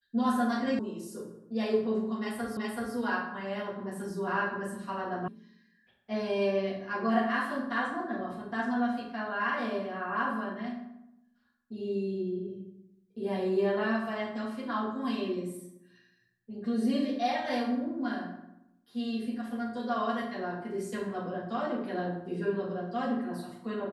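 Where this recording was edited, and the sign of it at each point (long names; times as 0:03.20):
0:00.79: cut off before it has died away
0:02.57: the same again, the last 0.38 s
0:05.28: cut off before it has died away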